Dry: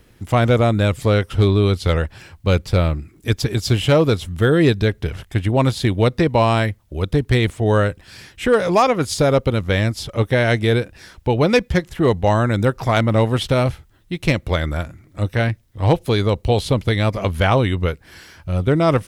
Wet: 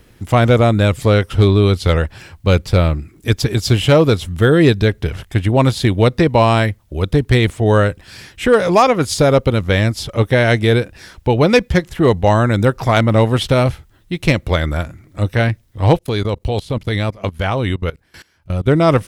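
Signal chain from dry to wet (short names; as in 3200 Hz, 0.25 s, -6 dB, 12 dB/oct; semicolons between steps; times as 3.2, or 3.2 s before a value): 15.97–18.66 level quantiser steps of 21 dB; gain +3.5 dB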